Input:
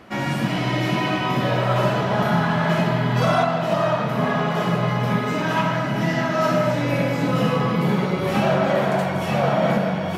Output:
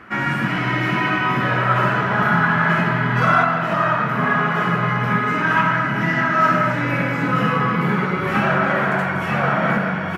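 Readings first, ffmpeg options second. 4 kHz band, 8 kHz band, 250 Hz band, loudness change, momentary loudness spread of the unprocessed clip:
-2.0 dB, n/a, 0.0 dB, +2.5 dB, 3 LU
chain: -af "firequalizer=gain_entry='entry(400,0);entry(580,-5);entry(1400,11);entry(3700,-6)':delay=0.05:min_phase=1"

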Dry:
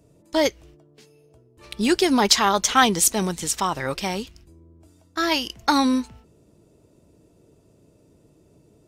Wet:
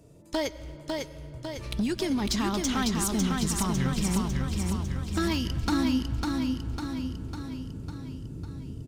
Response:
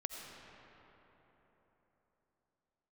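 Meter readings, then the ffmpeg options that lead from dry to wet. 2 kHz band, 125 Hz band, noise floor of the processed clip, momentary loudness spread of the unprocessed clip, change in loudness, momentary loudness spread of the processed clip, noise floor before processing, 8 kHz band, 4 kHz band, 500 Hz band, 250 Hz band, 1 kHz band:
-10.0 dB, +7.0 dB, -45 dBFS, 13 LU, -8.5 dB, 12 LU, -58 dBFS, -9.0 dB, -9.5 dB, -8.5 dB, -2.0 dB, -12.0 dB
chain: -filter_complex "[0:a]asubboost=boost=10.5:cutoff=200,acompressor=threshold=-27dB:ratio=12,asoftclip=type=hard:threshold=-24dB,aecho=1:1:551|1102|1653|2204|2755|3306|3857|4408:0.668|0.374|0.21|0.117|0.0657|0.0368|0.0206|0.0115,asplit=2[a][b];[1:a]atrim=start_sample=2205,asetrate=38808,aresample=44100[c];[b][c]afir=irnorm=-1:irlink=0,volume=-9.5dB[d];[a][d]amix=inputs=2:normalize=0"

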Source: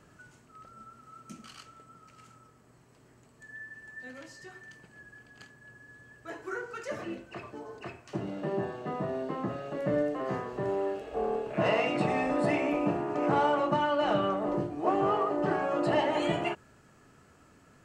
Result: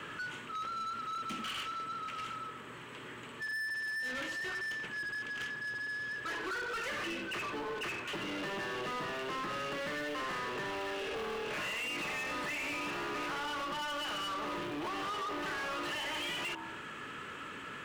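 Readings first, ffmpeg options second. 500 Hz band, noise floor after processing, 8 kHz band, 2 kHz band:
-11.5 dB, -46 dBFS, n/a, +4.0 dB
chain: -filter_complex "[0:a]bandreject=f=65.1:t=h:w=4,bandreject=f=130.2:t=h:w=4,bandreject=f=195.3:t=h:w=4,bandreject=f=260.4:t=h:w=4,bandreject=f=325.5:t=h:w=4,bandreject=f=390.6:t=h:w=4,bandreject=f=455.7:t=h:w=4,bandreject=f=520.8:t=h:w=4,bandreject=f=585.9:t=h:w=4,bandreject=f=651:t=h:w=4,bandreject=f=716.1:t=h:w=4,bandreject=f=781.2:t=h:w=4,bandreject=f=846.3:t=h:w=4,bandreject=f=911.4:t=h:w=4,bandreject=f=976.5:t=h:w=4,bandreject=f=1.0416k:t=h:w=4,bandreject=f=1.1067k:t=h:w=4,bandreject=f=1.1718k:t=h:w=4,asplit=2[a][b];[b]acrusher=bits=4:mode=log:mix=0:aa=0.000001,volume=-5.5dB[c];[a][c]amix=inputs=2:normalize=0,acrossover=split=230|1100[d][e][f];[d]acompressor=threshold=-43dB:ratio=4[g];[e]acompressor=threshold=-39dB:ratio=4[h];[f]acompressor=threshold=-35dB:ratio=4[i];[g][h][i]amix=inputs=3:normalize=0,highshelf=f=4k:t=q:w=3:g=-6.5,acompressor=threshold=-37dB:ratio=6,equalizer=f=700:t=o:w=0.35:g=-13.5,asplit=2[j][k];[k]highpass=f=720:p=1,volume=26dB,asoftclip=type=tanh:threshold=-28dB[l];[j][l]amix=inputs=2:normalize=0,lowpass=f=5.4k:p=1,volume=-6dB,volume=-3dB"

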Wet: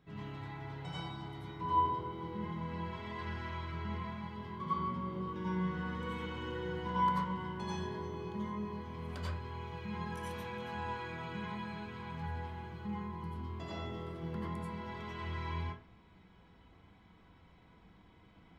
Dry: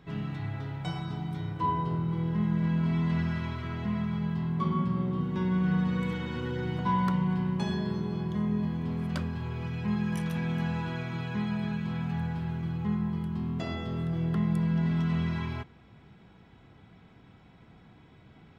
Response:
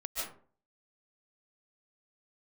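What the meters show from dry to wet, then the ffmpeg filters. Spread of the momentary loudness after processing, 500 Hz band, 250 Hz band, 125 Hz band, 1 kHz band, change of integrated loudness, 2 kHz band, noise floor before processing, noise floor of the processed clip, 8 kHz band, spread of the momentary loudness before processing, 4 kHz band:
9 LU, -4.5 dB, -12.5 dB, -12.5 dB, -0.5 dB, -9.0 dB, -4.5 dB, -56 dBFS, -62 dBFS, n/a, 8 LU, -4.5 dB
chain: -filter_complex "[0:a]flanger=delay=9.4:depth=2.9:regen=76:speed=0.94:shape=sinusoidal[a];[1:a]atrim=start_sample=2205,asetrate=70560,aresample=44100[b];[a][b]afir=irnorm=-1:irlink=0,volume=1dB"

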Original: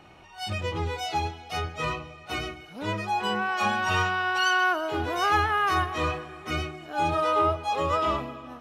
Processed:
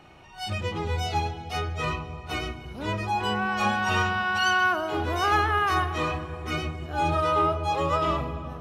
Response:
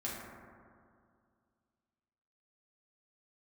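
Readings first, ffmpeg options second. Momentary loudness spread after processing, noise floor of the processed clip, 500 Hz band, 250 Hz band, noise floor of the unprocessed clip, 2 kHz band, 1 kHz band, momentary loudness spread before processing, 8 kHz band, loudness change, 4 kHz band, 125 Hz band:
10 LU, -42 dBFS, +0.5 dB, +2.0 dB, -48 dBFS, +0.5 dB, +0.5 dB, 10 LU, 0.0 dB, +0.5 dB, 0.0 dB, +3.5 dB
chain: -filter_complex "[0:a]asplit=2[a][b];[b]aemphasis=mode=reproduction:type=riaa[c];[1:a]atrim=start_sample=2205,asetrate=27783,aresample=44100,adelay=29[d];[c][d]afir=irnorm=-1:irlink=0,volume=-18.5dB[e];[a][e]amix=inputs=2:normalize=0"

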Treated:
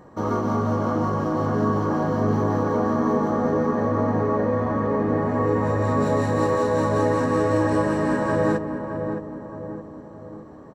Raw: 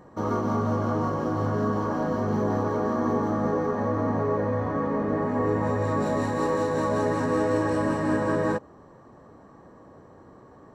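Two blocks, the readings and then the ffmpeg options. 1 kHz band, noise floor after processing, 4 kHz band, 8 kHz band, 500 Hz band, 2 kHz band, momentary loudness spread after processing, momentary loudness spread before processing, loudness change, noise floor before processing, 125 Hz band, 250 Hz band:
+3.5 dB, -41 dBFS, +2.5 dB, +2.5 dB, +3.5 dB, +3.0 dB, 14 LU, 2 LU, +3.5 dB, -51 dBFS, +4.0 dB, +3.5 dB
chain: -filter_complex "[0:a]asplit=2[a][b];[b]adelay=617,lowpass=f=1.1k:p=1,volume=-6dB,asplit=2[c][d];[d]adelay=617,lowpass=f=1.1k:p=1,volume=0.53,asplit=2[e][f];[f]adelay=617,lowpass=f=1.1k:p=1,volume=0.53,asplit=2[g][h];[h]adelay=617,lowpass=f=1.1k:p=1,volume=0.53,asplit=2[i][j];[j]adelay=617,lowpass=f=1.1k:p=1,volume=0.53,asplit=2[k][l];[l]adelay=617,lowpass=f=1.1k:p=1,volume=0.53,asplit=2[m][n];[n]adelay=617,lowpass=f=1.1k:p=1,volume=0.53[o];[a][c][e][g][i][k][m][o]amix=inputs=8:normalize=0,volume=2.5dB"

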